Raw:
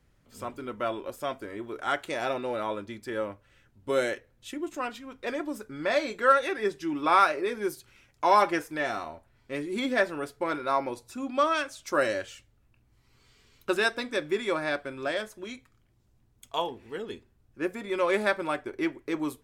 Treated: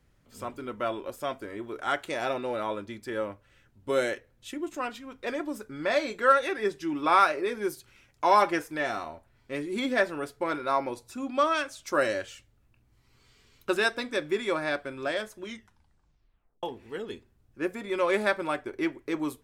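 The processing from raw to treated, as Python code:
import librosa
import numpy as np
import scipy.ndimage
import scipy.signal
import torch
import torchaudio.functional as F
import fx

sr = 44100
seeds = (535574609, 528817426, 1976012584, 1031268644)

y = fx.edit(x, sr, fx.tape_stop(start_s=15.44, length_s=1.19), tone=tone)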